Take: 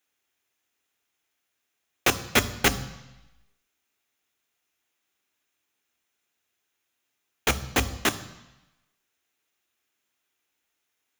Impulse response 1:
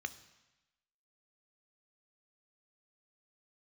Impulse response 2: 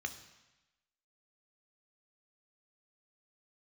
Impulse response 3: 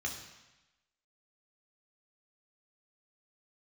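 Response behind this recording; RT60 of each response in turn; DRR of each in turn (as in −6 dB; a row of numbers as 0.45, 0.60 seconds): 1; 1.0, 1.0, 1.0 seconds; 11.5, 7.5, 0.0 decibels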